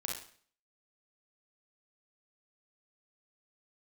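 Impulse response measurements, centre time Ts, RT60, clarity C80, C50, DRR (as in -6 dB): 40 ms, 0.50 s, 8.5 dB, 2.0 dB, -1.5 dB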